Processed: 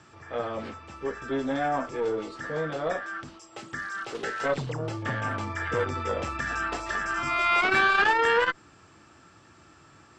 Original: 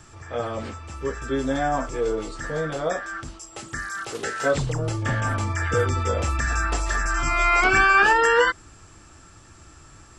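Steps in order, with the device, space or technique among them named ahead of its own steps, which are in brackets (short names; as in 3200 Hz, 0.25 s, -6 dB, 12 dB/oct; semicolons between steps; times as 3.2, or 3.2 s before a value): valve radio (BPF 140–4500 Hz; tube stage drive 11 dB, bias 0.55; core saturation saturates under 700 Hz)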